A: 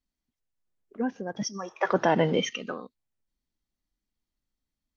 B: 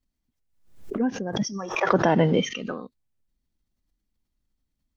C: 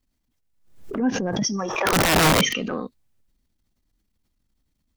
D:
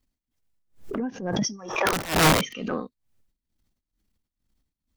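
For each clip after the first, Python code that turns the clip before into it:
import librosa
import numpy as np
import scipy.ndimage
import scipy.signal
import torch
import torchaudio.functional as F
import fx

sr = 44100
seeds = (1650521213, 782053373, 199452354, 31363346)

y1 = fx.low_shelf(x, sr, hz=290.0, db=8.5)
y1 = fx.pre_swell(y1, sr, db_per_s=94.0)
y2 = fx.transient(y1, sr, attack_db=-11, sustain_db=4)
y2 = (np.mod(10.0 ** (17.0 / 20.0) * y2 + 1.0, 2.0) - 1.0) / 10.0 ** (17.0 / 20.0)
y2 = y2 * librosa.db_to_amplitude(5.5)
y3 = y2 * (1.0 - 0.87 / 2.0 + 0.87 / 2.0 * np.cos(2.0 * np.pi * 2.2 * (np.arange(len(y2)) / sr)))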